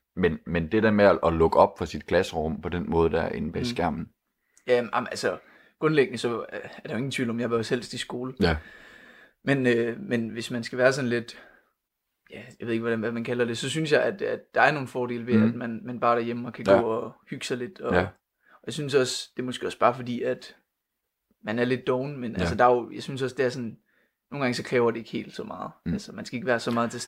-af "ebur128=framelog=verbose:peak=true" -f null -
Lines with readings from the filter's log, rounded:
Integrated loudness:
  I:         -26.1 LUFS
  Threshold: -36.8 LUFS
Loudness range:
  LRA:         4.8 LU
  Threshold: -47.2 LUFS
  LRA low:   -29.2 LUFS
  LRA high:  -24.5 LUFS
True peak:
  Peak:       -4.9 dBFS